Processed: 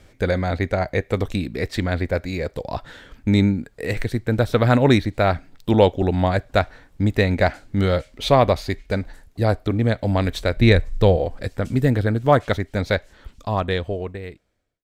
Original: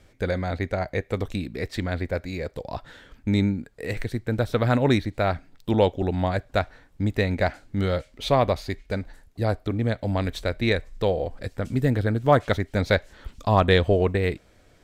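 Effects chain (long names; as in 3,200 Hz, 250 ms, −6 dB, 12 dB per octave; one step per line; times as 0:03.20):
fade-out on the ending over 3.38 s
0:10.57–0:11.17: low-shelf EQ 180 Hz +10 dB
level +5 dB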